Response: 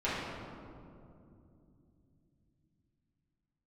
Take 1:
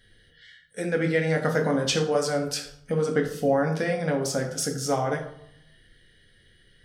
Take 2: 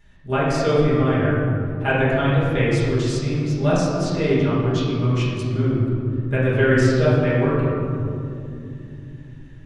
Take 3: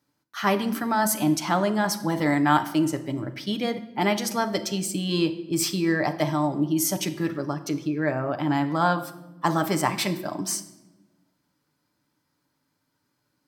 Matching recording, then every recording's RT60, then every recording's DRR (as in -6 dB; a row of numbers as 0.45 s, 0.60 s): 2; 0.70 s, 2.7 s, no single decay rate; 1.5 dB, -11.5 dB, 6.5 dB